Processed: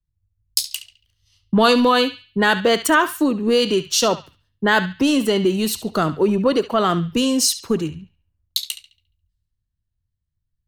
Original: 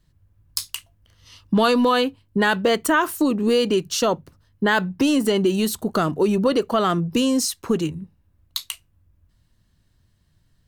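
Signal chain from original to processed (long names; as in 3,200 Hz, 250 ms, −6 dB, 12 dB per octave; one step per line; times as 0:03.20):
dynamic equaliser 4,000 Hz, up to +3 dB, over −34 dBFS, Q 1.1
on a send: feedback echo with a band-pass in the loop 70 ms, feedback 48%, band-pass 2,800 Hz, level −9 dB
on the sum: multiband upward and downward expander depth 70%
level +1.5 dB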